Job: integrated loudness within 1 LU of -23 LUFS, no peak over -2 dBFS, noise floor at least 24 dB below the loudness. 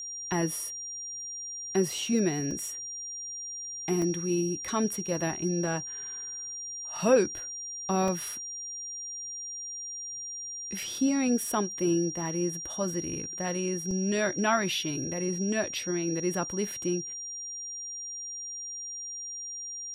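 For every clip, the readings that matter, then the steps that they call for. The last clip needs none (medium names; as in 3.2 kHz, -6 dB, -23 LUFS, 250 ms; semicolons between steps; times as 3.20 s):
dropouts 4; longest dropout 2.0 ms; steady tone 5.7 kHz; tone level -36 dBFS; loudness -30.5 LUFS; peak level -11.0 dBFS; loudness target -23.0 LUFS
-> interpolate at 2.51/4.02/8.08/13.91 s, 2 ms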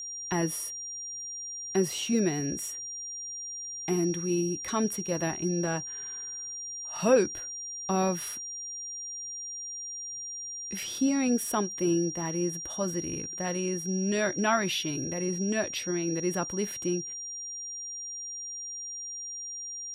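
dropouts 0; steady tone 5.7 kHz; tone level -36 dBFS
-> band-stop 5.7 kHz, Q 30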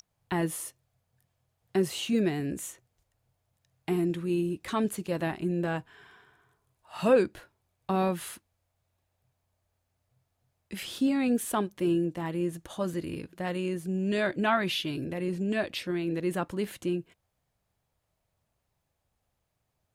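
steady tone not found; loudness -30.0 LUFS; peak level -11.5 dBFS; loudness target -23.0 LUFS
-> trim +7 dB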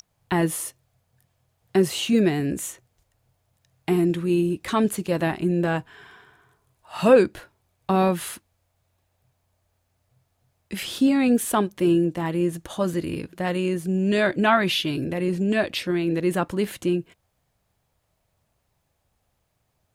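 loudness -23.0 LUFS; peak level -4.5 dBFS; noise floor -73 dBFS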